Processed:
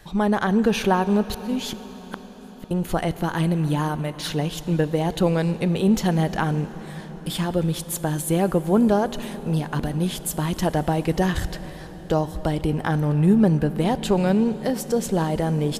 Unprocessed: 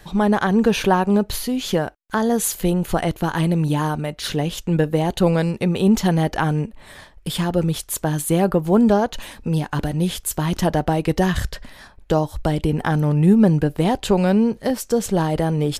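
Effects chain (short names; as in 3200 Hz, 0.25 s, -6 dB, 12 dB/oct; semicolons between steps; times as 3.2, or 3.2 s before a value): 1.3–2.71 flipped gate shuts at -14 dBFS, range -39 dB; reverb RT60 6.4 s, pre-delay 28 ms, DRR 13.5 dB; gain -3 dB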